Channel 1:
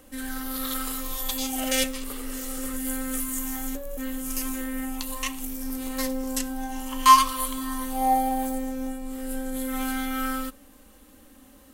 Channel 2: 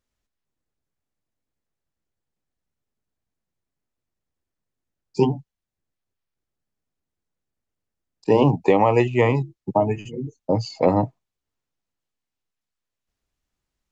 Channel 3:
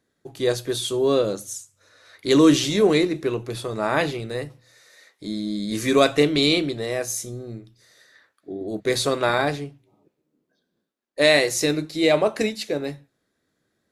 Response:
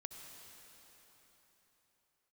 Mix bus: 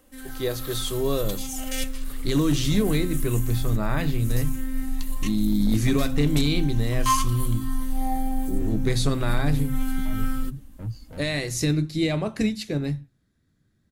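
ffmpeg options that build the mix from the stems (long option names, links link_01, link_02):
-filter_complex "[0:a]volume=-6.5dB[link_01];[1:a]asoftclip=type=tanh:threshold=-20.5dB,adelay=300,volume=-18dB[link_02];[2:a]alimiter=limit=-12dB:level=0:latency=1:release=254,volume=-3dB,asplit=2[link_03][link_04];[link_04]apad=whole_len=626901[link_05];[link_02][link_05]sidechaincompress=threshold=-35dB:ratio=8:attack=16:release=116[link_06];[link_01][link_06][link_03]amix=inputs=3:normalize=0,asubboost=boost=9.5:cutoff=160,volume=13dB,asoftclip=hard,volume=-13dB"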